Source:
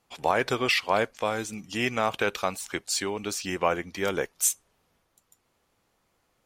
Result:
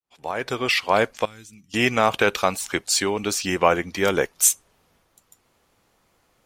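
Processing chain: fade-in on the opening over 1.18 s; 1.25–1.74 s: amplifier tone stack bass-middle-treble 6-0-2; trim +7 dB

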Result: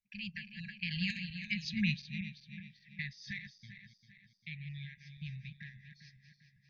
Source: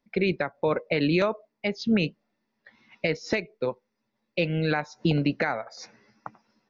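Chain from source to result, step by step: backward echo that repeats 179 ms, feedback 70%, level -9 dB; Doppler pass-by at 1.63 s, 39 m/s, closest 27 m; brick-wall FIR band-stop 210–1600 Hz; trim -4 dB

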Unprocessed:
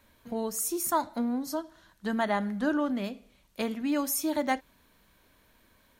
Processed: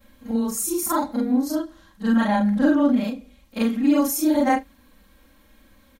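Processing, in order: short-time spectra conjugated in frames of 97 ms; bass shelf 360 Hz +6.5 dB; comb 3.7 ms, depth 86%; trim +5.5 dB

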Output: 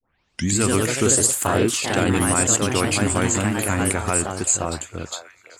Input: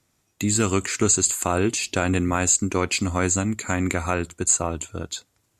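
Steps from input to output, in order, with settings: tape start-up on the opening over 0.52 s; repeats whose band climbs or falls 517 ms, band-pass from 700 Hz, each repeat 0.7 oct, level -11.5 dB; ever faster or slower copies 152 ms, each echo +2 st, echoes 3

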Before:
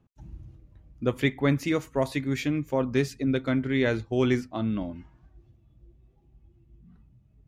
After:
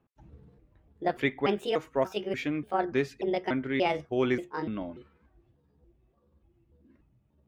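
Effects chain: pitch shift switched off and on +6 st, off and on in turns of 292 ms; tone controls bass -10 dB, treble -12 dB

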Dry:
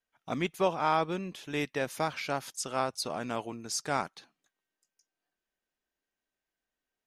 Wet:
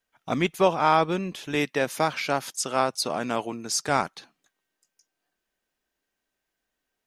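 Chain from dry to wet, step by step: 1.55–3.89 s: high-pass 130 Hz; trim +7 dB

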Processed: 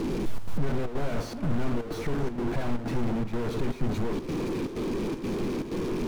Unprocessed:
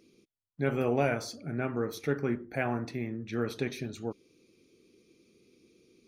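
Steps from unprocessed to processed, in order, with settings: one-bit comparator; tilt EQ -4 dB/octave; repeats whose band climbs or falls 327 ms, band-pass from 1.1 kHz, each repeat 1.4 oct, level -5.5 dB; square tremolo 2.1 Hz, depth 60%, duty 80%; peaking EQ 64 Hz -11 dB 1.3 oct

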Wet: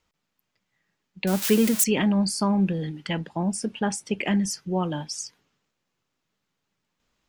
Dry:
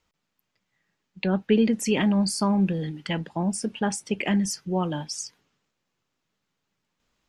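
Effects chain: 1.27–1.84 s: zero-crossing glitches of -15 dBFS

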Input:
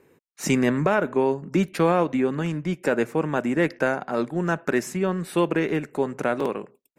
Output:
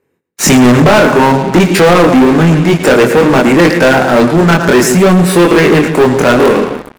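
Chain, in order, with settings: chorus 0.57 Hz, depth 2.1 ms; two-band feedback delay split 460 Hz, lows 149 ms, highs 112 ms, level -13 dB; waveshaping leveller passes 5; trim +7.5 dB

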